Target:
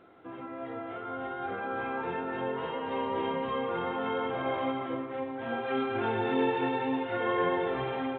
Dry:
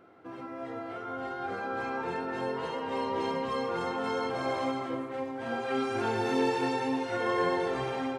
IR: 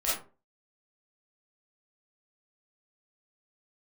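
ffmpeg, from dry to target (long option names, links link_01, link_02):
-ar 8000 -c:a pcm_alaw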